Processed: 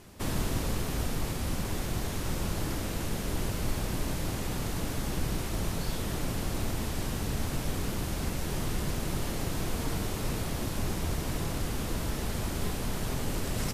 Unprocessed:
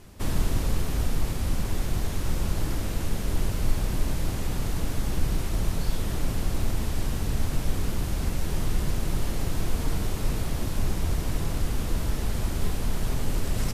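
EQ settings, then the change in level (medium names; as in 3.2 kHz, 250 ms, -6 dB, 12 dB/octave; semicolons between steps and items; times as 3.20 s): bass shelf 75 Hz -10.5 dB; 0.0 dB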